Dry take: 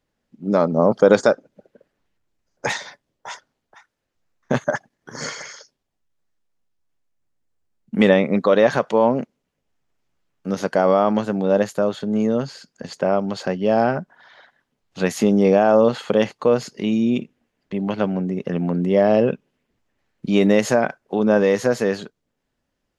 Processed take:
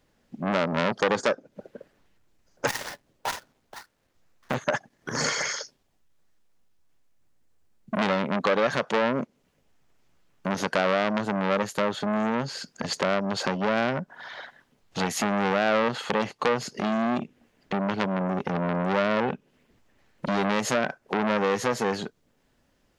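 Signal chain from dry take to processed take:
0:02.67–0:04.54: gap after every zero crossing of 0.15 ms
downward compressor 2.5 to 1, threshold −31 dBFS, peak gain reduction 15 dB
saturating transformer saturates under 2,600 Hz
level +8.5 dB

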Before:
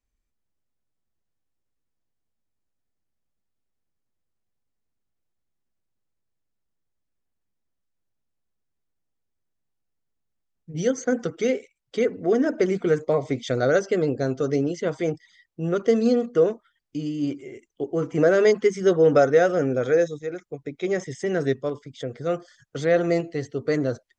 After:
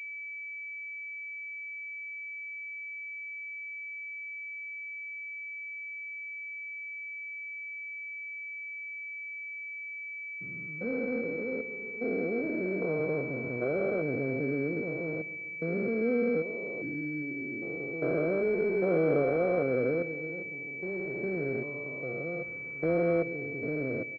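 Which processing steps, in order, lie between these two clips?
spectrum averaged block by block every 400 ms
high-pass filter 120 Hz
on a send: repeating echo 133 ms, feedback 52%, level −17 dB
on the sum: switching amplifier with a slow clock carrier 2,300 Hz
level −4 dB

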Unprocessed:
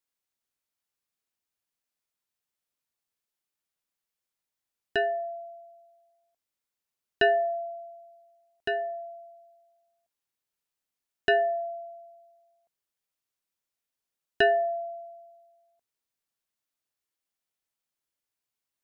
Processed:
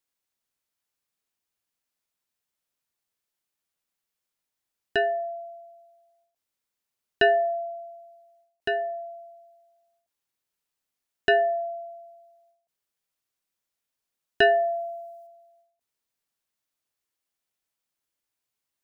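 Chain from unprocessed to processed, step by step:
0:14.42–0:15.27: high-shelf EQ 4,100 Hz +10.5 dB
every ending faded ahead of time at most 110 dB per second
level +2.5 dB

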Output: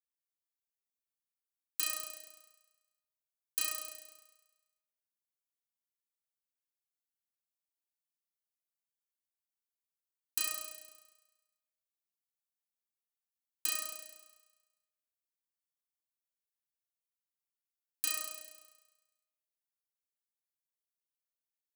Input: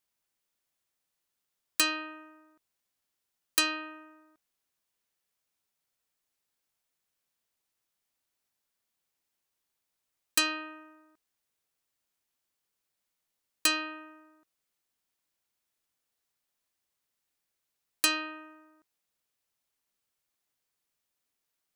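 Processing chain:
noise gate −59 dBFS, range −11 dB
first-order pre-emphasis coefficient 0.8
on a send: flutter between parallel walls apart 5.8 metres, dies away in 1.2 s
on the sum: level −8.5 dB

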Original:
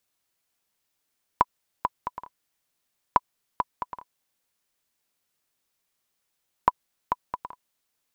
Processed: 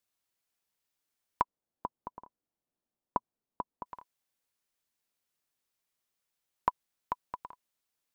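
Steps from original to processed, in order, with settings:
0:01.42–0:03.86: drawn EQ curve 120 Hz 0 dB, 230 Hz +6 dB, 770 Hz 0 dB, 2,100 Hz −13 dB
level −7 dB

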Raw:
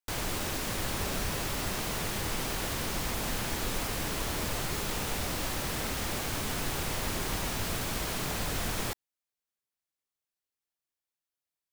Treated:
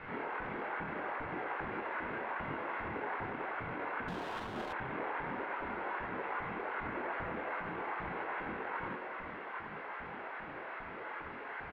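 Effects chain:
sign of each sample alone
spectral tilt +3.5 dB per octave
comb filter 1.7 ms, depth 30%
harmonic generator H 4 −16 dB, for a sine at −15 dBFS
multi-voice chorus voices 6, 0.29 Hz, delay 25 ms, depth 4.6 ms
auto-filter high-pass saw up 2.5 Hz 260–1,600 Hz
single-sideband voice off tune −270 Hz 300–2,300 Hz
on a send: delay with a band-pass on its return 93 ms, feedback 66%, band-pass 670 Hz, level −5 dB
0:04.08–0:04.73: on the sum: windowed peak hold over 9 samples
level −3 dB

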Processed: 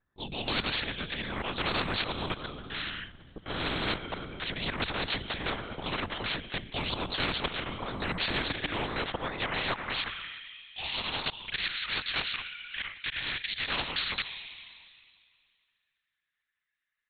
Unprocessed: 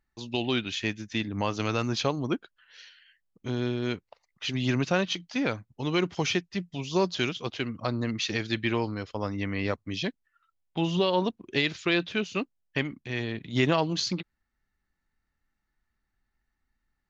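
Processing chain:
parametric band 2,600 Hz −7.5 dB 0.56 octaves
noise gate with hold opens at −49 dBFS
volume swells 313 ms
frequency shifter −55 Hz
on a send at −21.5 dB: convolution reverb RT60 2.2 s, pre-delay 46 ms
on the sum: high-pass filter sweep 76 Hz → 2,300 Hz, 0:07.59–0:10.58
linear-prediction vocoder at 8 kHz whisper
every bin compressed towards the loudest bin 4 to 1

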